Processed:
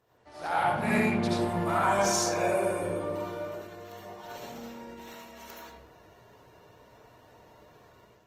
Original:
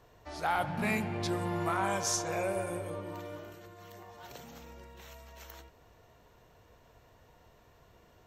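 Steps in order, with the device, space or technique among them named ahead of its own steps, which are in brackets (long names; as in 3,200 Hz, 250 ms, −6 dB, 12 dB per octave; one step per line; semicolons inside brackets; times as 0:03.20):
far-field microphone of a smart speaker (convolution reverb RT60 0.75 s, pre-delay 67 ms, DRR −5.5 dB; high-pass filter 110 Hz 12 dB per octave; automatic gain control gain up to 7.5 dB; level −8 dB; Opus 24 kbit/s 48,000 Hz)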